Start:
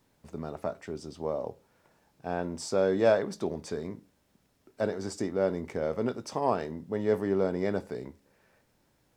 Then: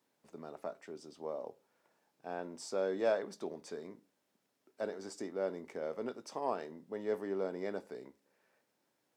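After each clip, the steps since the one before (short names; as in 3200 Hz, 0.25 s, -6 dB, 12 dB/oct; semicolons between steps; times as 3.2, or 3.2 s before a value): HPF 260 Hz 12 dB/oct; gain -8 dB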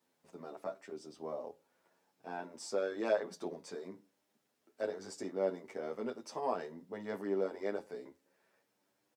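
endless flanger 9.2 ms +0.62 Hz; gain +3.5 dB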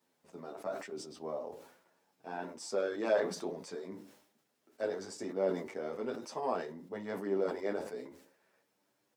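flange 1.1 Hz, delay 4.4 ms, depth 9.6 ms, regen -65%; sustainer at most 82 dB/s; gain +5.5 dB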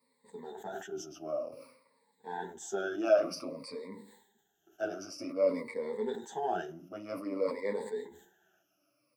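moving spectral ripple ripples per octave 0.96, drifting -0.53 Hz, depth 23 dB; gain -4 dB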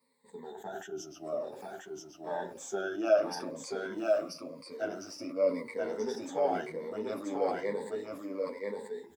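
echo 0.983 s -3 dB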